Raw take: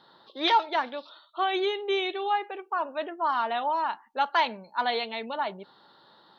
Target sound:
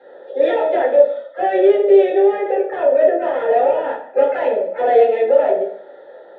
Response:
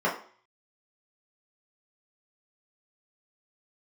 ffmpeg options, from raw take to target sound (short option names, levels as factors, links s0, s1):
-filter_complex "[0:a]asplit=2[s0][s1];[s1]asetrate=66075,aresample=44100,atempo=0.66742,volume=0.2[s2];[s0][s2]amix=inputs=2:normalize=0,asplit=2[s3][s4];[s4]highpass=f=720:p=1,volume=14.1,asoftclip=type=tanh:threshold=0.282[s5];[s3][s5]amix=inputs=2:normalize=0,lowpass=f=1000:p=1,volume=0.501,asplit=3[s6][s7][s8];[s6]bandpass=f=530:t=q:w=8,volume=1[s9];[s7]bandpass=f=1840:t=q:w=8,volume=0.501[s10];[s8]bandpass=f=2480:t=q:w=8,volume=0.355[s11];[s9][s10][s11]amix=inputs=3:normalize=0[s12];[1:a]atrim=start_sample=2205,afade=t=out:st=0.27:d=0.01,atrim=end_sample=12348,asetrate=28665,aresample=44100[s13];[s12][s13]afir=irnorm=-1:irlink=0,volume=1.19"